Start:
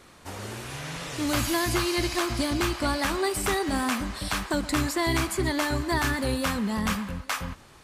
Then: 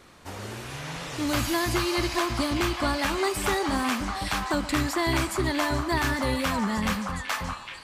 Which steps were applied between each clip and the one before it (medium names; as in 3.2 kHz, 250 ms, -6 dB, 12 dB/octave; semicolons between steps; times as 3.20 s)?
peaking EQ 10 kHz -3.5 dB 0.95 oct; on a send: repeats whose band climbs or falls 617 ms, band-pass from 970 Hz, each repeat 1.4 oct, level -2 dB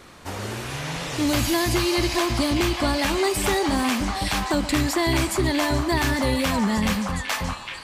dynamic bell 1.3 kHz, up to -6 dB, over -42 dBFS, Q 1.7; in parallel at 0 dB: peak limiter -20.5 dBFS, peak gain reduction 6.5 dB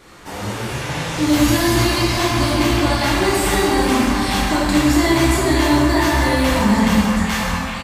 doubling 27 ms -11.5 dB; plate-style reverb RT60 2.3 s, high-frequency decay 0.55×, DRR -7 dB; trim -2 dB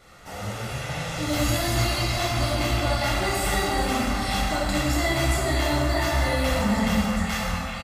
comb 1.5 ms, depth 55%; trim -7.5 dB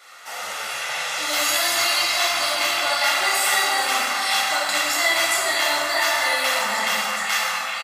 high-pass 1 kHz 12 dB/octave; trim +8.5 dB